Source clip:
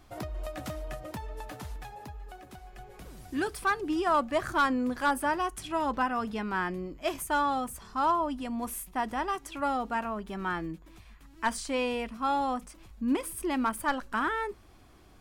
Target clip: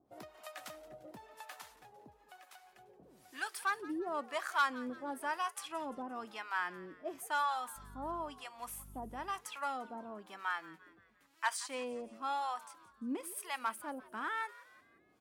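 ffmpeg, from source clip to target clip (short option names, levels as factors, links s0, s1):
-filter_complex "[0:a]highpass=150,lowshelf=f=350:g=-11,asettb=1/sr,asplit=3[s0][s1][s2];[s0]atrim=end=7.764[s3];[s1]atrim=start=7.76:end=9.57,asetpts=PTS-STARTPTS,afade=t=in:d=0.004:c=qsin,afade=t=out:st=1.806:d=0.004:c=qsin,aeval=exprs='val(0)+0.00355*(sin(2*PI*50*n/s)+sin(2*PI*2*50*n/s)/2+sin(2*PI*3*50*n/s)/3+sin(2*PI*4*50*n/s)/4+sin(2*PI*5*50*n/s)/5)':c=same[s4];[s2]atrim=start=9.566[s5];[s3][s4]acrossfade=d=0.004:c1=hsin:c2=qsin[s6];[s6][s5]acrossfade=d=0.004:c1=qsin:c2=hsin,acrossover=split=650[s7][s8];[s7]aeval=exprs='val(0)*(1-1/2+1/2*cos(2*PI*1*n/s))':c=same[s9];[s8]aeval=exprs='val(0)*(1-1/2-1/2*cos(2*PI*1*n/s))':c=same[s10];[s9][s10]amix=inputs=2:normalize=0,asplit=5[s11][s12][s13][s14][s15];[s12]adelay=173,afreqshift=88,volume=0.112[s16];[s13]adelay=346,afreqshift=176,volume=0.0537[s17];[s14]adelay=519,afreqshift=264,volume=0.0257[s18];[s15]adelay=692,afreqshift=352,volume=0.0124[s19];[s11][s16][s17][s18][s19]amix=inputs=5:normalize=0,volume=0.794"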